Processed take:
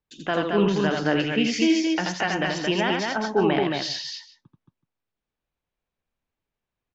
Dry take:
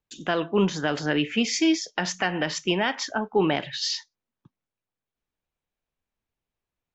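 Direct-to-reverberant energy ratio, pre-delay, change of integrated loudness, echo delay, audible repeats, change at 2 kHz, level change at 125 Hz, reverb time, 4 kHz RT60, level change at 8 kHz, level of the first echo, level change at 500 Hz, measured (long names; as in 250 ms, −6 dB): no reverb audible, no reverb audible, +2.0 dB, 83 ms, 3, +1.5 dB, +2.5 dB, no reverb audible, no reverb audible, can't be measured, −3.5 dB, +2.5 dB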